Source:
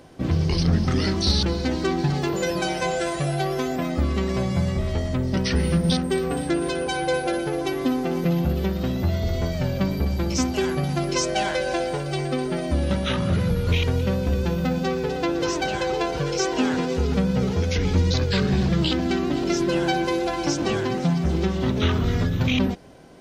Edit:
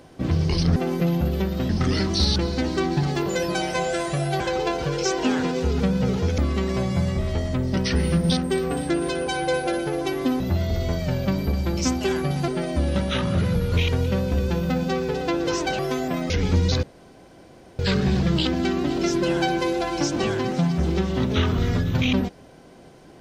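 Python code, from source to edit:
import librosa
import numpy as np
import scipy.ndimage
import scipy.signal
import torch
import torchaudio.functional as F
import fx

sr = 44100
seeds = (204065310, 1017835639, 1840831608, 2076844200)

y = fx.edit(x, sr, fx.swap(start_s=3.47, length_s=0.51, other_s=15.74, other_length_s=1.98),
    fx.move(start_s=8.0, length_s=0.93, to_s=0.76),
    fx.cut(start_s=11.01, length_s=1.42),
    fx.insert_room_tone(at_s=18.25, length_s=0.96), tone=tone)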